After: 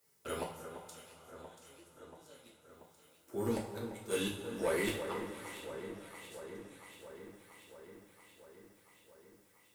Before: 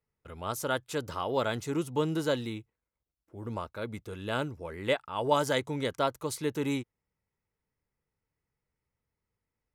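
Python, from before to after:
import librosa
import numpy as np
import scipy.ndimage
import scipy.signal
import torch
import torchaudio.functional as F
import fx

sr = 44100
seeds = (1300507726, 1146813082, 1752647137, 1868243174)

y = scipy.signal.sosfilt(scipy.signal.butter(2, 94.0, 'highpass', fs=sr, output='sos'), x)
y = fx.bass_treble(y, sr, bass_db=-7, treble_db=13)
y = fx.gate_flip(y, sr, shuts_db=-27.0, range_db=-42)
y = 10.0 ** (-36.5 / 20.0) * np.tanh(y / 10.0 ** (-36.5 / 20.0))
y = fx.echo_alternate(y, sr, ms=342, hz=1800.0, feedback_pct=82, wet_db=-9.0)
y = fx.rev_double_slope(y, sr, seeds[0], early_s=0.41, late_s=4.2, knee_db=-18, drr_db=-4.5)
y = y * librosa.db_to_amplitude(5.0)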